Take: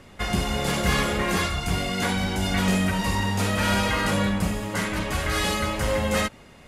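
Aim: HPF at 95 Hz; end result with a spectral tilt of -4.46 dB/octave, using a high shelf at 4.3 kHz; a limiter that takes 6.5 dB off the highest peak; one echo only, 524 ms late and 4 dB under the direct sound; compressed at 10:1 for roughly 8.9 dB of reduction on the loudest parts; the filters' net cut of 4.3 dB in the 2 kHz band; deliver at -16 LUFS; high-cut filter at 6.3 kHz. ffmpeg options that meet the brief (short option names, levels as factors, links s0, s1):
-af "highpass=95,lowpass=6300,equalizer=f=2000:t=o:g=-4,highshelf=f=4300:g=-6.5,acompressor=threshold=0.0355:ratio=10,alimiter=level_in=1.19:limit=0.0631:level=0:latency=1,volume=0.841,aecho=1:1:524:0.631,volume=7.5"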